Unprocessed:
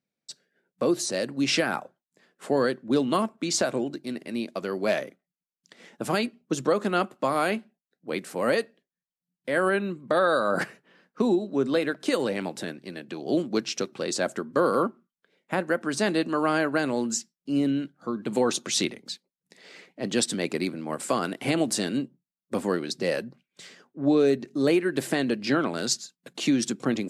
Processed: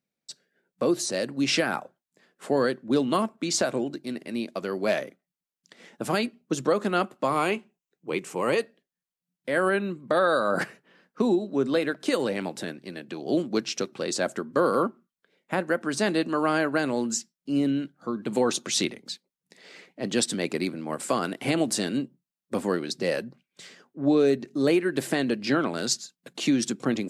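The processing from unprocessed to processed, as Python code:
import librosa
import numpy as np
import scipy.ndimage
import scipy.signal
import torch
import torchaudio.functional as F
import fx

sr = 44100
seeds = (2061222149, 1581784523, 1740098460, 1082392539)

y = fx.ripple_eq(x, sr, per_octave=0.72, db=8, at=(7.3, 8.6))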